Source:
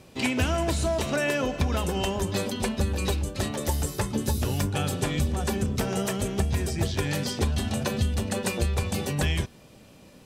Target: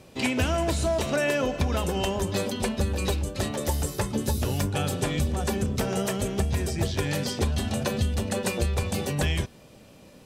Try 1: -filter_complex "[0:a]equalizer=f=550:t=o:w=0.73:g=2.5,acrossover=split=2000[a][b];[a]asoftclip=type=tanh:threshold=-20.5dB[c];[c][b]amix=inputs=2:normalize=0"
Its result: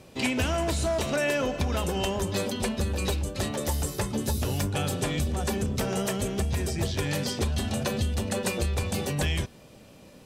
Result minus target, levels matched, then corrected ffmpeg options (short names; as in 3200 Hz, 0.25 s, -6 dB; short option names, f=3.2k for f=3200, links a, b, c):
soft clip: distortion +15 dB
-filter_complex "[0:a]equalizer=f=550:t=o:w=0.73:g=2.5,acrossover=split=2000[a][b];[a]asoftclip=type=tanh:threshold=-10.5dB[c];[c][b]amix=inputs=2:normalize=0"